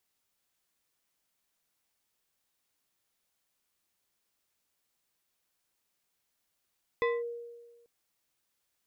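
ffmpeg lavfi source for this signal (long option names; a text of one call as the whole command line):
ffmpeg -f lavfi -i "aevalsrc='0.0668*pow(10,-3*t/1.36)*sin(2*PI*472*t+0.93*clip(1-t/0.21,0,1)*sin(2*PI*3.2*472*t))':duration=0.84:sample_rate=44100" out.wav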